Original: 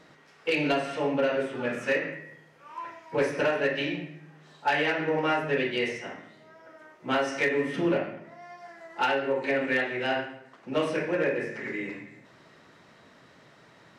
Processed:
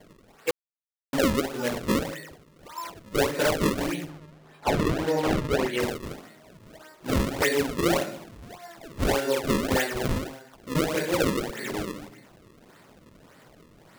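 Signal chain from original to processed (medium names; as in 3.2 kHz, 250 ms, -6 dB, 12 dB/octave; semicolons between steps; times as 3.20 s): decimation with a swept rate 33×, swing 160% 1.7 Hz; 0.51–1.13 s: mute; 4.09–5.80 s: treble shelf 5.4 kHz -9 dB; trim +2 dB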